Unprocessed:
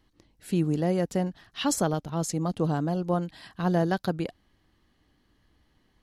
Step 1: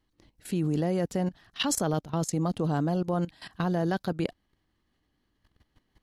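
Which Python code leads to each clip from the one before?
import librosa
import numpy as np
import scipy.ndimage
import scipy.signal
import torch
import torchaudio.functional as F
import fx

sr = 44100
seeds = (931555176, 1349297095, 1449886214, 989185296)

y = fx.level_steps(x, sr, step_db=16)
y = F.gain(torch.from_numpy(y), 5.5).numpy()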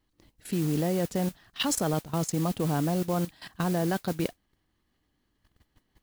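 y = fx.mod_noise(x, sr, seeds[0], snr_db=16)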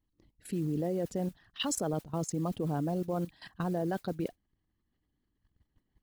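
y = fx.envelope_sharpen(x, sr, power=1.5)
y = F.gain(torch.from_numpy(y), -5.0).numpy()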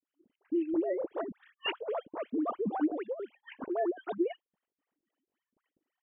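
y = fx.sine_speech(x, sr)
y = fx.dispersion(y, sr, late='highs', ms=76.0, hz=1700.0)
y = fx.harmonic_tremolo(y, sr, hz=3.8, depth_pct=100, crossover_hz=430.0)
y = F.gain(torch.from_numpy(y), 5.0).numpy()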